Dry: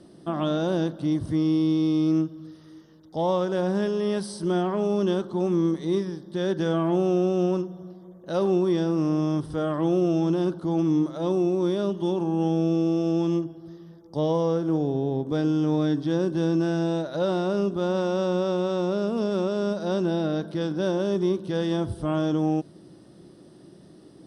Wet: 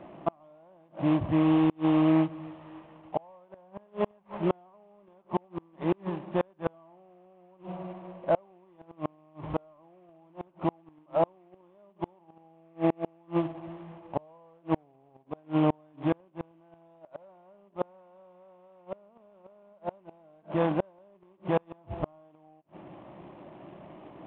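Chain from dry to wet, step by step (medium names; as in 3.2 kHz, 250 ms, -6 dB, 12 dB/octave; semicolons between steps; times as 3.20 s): CVSD coder 16 kbps; high-order bell 800 Hz +12.5 dB 1.2 oct; inverted gate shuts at -14 dBFS, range -37 dB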